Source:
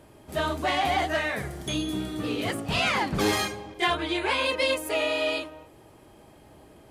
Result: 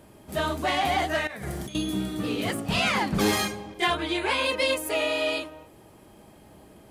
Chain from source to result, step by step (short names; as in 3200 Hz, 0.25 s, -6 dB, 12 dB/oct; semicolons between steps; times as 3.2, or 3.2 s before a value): bell 200 Hz +7 dB 0.33 oct; 1.27–1.75 negative-ratio compressor -34 dBFS, ratio -0.5; high shelf 9100 Hz +5.5 dB